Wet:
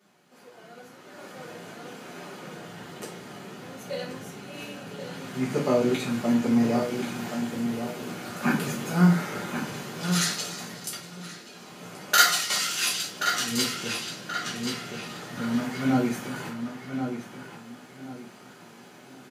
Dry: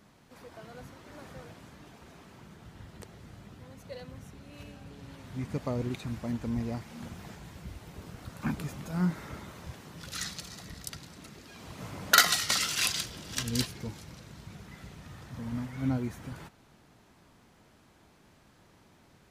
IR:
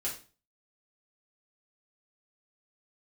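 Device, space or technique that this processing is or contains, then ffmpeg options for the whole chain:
far laptop microphone: -filter_complex "[0:a]lowshelf=frequency=300:gain=-5,asplit=2[link_01][link_02];[link_02]adelay=1079,lowpass=frequency=3800:poles=1,volume=-7.5dB,asplit=2[link_03][link_04];[link_04]adelay=1079,lowpass=frequency=3800:poles=1,volume=0.3,asplit=2[link_05][link_06];[link_06]adelay=1079,lowpass=frequency=3800:poles=1,volume=0.3,asplit=2[link_07][link_08];[link_08]adelay=1079,lowpass=frequency=3800:poles=1,volume=0.3[link_09];[link_01][link_03][link_05][link_07][link_09]amix=inputs=5:normalize=0[link_10];[1:a]atrim=start_sample=2205[link_11];[link_10][link_11]afir=irnorm=-1:irlink=0,highpass=frequency=150:width=0.5412,highpass=frequency=150:width=1.3066,dynaudnorm=framelen=140:gausssize=21:maxgain=12dB,volume=-2.5dB"

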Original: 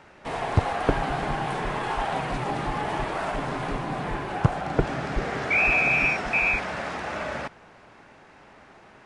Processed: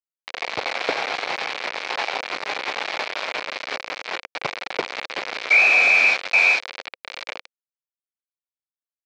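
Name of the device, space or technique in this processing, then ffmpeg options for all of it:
hand-held game console: -af "acrusher=bits=3:mix=0:aa=0.000001,highpass=480,equalizer=frequency=520:width_type=q:width=4:gain=5,equalizer=frequency=2300:width_type=q:width=4:gain=8,equalizer=frequency=4200:width_type=q:width=4:gain=4,lowpass=frequency=5200:width=0.5412,lowpass=frequency=5200:width=1.3066"

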